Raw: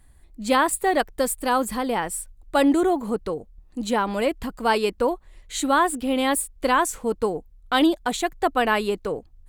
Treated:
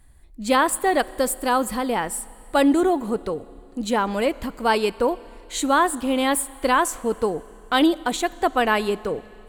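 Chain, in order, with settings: Schroeder reverb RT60 2.9 s, combs from 29 ms, DRR 19.5 dB; trim +1 dB

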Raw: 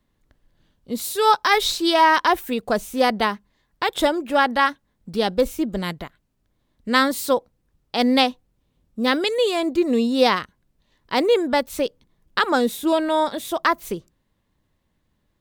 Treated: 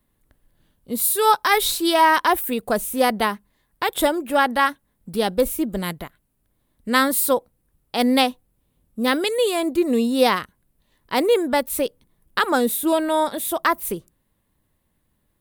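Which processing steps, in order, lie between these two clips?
resonant high shelf 8 kHz +9.5 dB, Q 1.5

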